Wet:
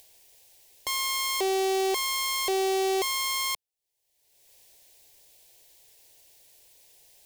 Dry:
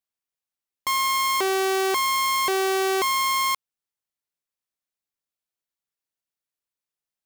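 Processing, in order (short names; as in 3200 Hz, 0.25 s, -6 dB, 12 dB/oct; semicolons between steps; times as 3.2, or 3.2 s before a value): upward compressor, threshold -30 dBFS; fixed phaser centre 530 Hz, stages 4; overloaded stage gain 19.5 dB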